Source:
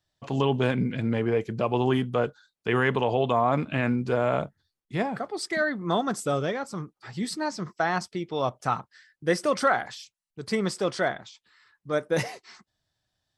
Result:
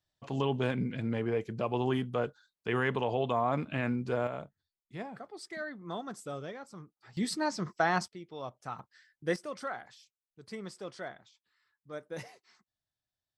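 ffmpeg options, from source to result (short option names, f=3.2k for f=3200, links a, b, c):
-af "asetnsamples=n=441:p=0,asendcmd='4.27 volume volume -13.5dB;7.17 volume volume -2dB;8.08 volume volume -14dB;8.79 volume volume -7dB;9.36 volume volume -15.5dB',volume=-6.5dB"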